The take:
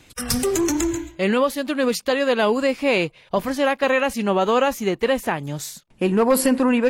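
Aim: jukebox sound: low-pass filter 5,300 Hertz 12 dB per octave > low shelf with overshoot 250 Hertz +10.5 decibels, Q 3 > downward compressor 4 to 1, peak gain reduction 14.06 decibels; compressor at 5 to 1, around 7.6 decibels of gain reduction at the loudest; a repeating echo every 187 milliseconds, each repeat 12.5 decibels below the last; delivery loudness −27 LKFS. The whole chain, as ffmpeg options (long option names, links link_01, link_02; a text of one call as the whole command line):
ffmpeg -i in.wav -af "acompressor=threshold=-22dB:ratio=5,lowpass=5300,lowshelf=frequency=250:width_type=q:width=3:gain=10.5,aecho=1:1:187|374|561:0.237|0.0569|0.0137,acompressor=threshold=-25dB:ratio=4,volume=1.5dB" out.wav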